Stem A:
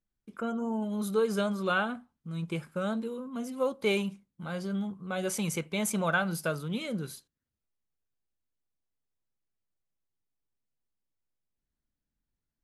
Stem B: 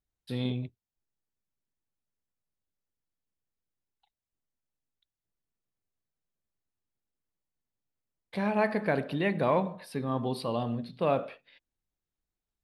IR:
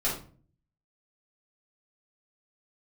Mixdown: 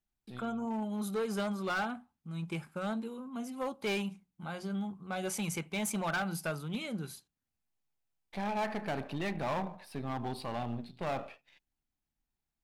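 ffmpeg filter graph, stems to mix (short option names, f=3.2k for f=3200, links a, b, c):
-filter_complex "[0:a]acontrast=89,bandreject=f=60:t=h:w=6,bandreject=f=120:t=h:w=6,bandreject=f=180:t=h:w=6,volume=-10.5dB,asplit=2[a][b];[1:a]aeval=exprs='if(lt(val(0),0),0.447*val(0),val(0))':c=same,volume=-3dB[c];[b]apad=whole_len=557423[d];[c][d]sidechaincompress=threshold=-58dB:ratio=3:attack=16:release=316[e];[a][e]amix=inputs=2:normalize=0,equalizer=f=500:t=o:w=0.33:g=-6,equalizer=f=800:t=o:w=0.33:g=7,equalizer=f=2.5k:t=o:w=0.33:g=3,asoftclip=type=hard:threshold=-29dB"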